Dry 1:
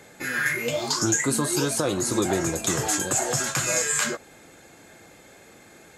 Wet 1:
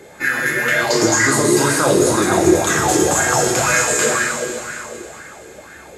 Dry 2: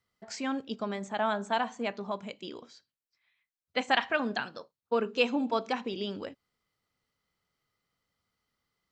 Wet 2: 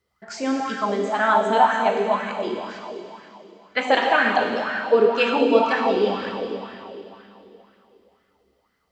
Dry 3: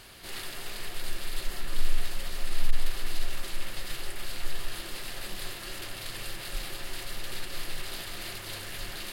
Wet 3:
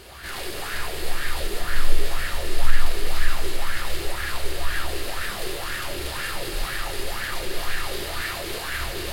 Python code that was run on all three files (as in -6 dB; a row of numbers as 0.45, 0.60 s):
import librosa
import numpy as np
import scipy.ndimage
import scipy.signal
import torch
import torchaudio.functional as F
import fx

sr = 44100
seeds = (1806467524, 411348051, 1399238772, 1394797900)

y = fx.peak_eq(x, sr, hz=67.0, db=14.5, octaves=0.25)
y = fx.rev_plate(y, sr, seeds[0], rt60_s=3.2, hf_ratio=0.95, predelay_ms=0, drr_db=-1.5)
y = fx.bell_lfo(y, sr, hz=2.0, low_hz=370.0, high_hz=1700.0, db=13)
y = y * librosa.db_to_amplitude(2.5)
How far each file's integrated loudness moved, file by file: +8.5, +11.0, +8.5 LU